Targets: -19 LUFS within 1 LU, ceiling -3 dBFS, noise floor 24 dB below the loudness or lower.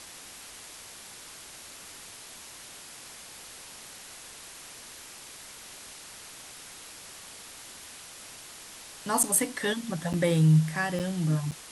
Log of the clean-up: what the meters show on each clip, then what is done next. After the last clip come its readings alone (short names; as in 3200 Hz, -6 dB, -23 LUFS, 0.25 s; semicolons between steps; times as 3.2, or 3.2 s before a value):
dropouts 4; longest dropout 7.5 ms; noise floor -47 dBFS; noise floor target -50 dBFS; loudness -26.0 LUFS; peak -8.5 dBFS; loudness target -19.0 LUFS
-> interpolate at 9.23/10.13/10.99/11.51, 7.5 ms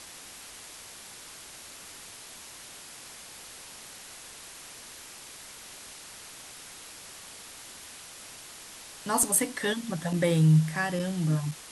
dropouts 0; noise floor -47 dBFS; noise floor target -50 dBFS
-> denoiser 6 dB, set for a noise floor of -47 dBFS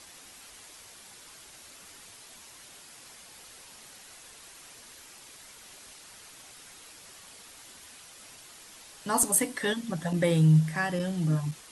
noise floor -51 dBFS; loudness -26.0 LUFS; peak -8.5 dBFS; loudness target -19.0 LUFS
-> gain +7 dB; limiter -3 dBFS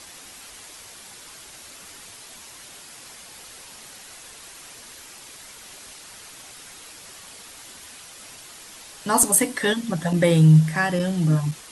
loudness -19.5 LUFS; peak -3.0 dBFS; noise floor -44 dBFS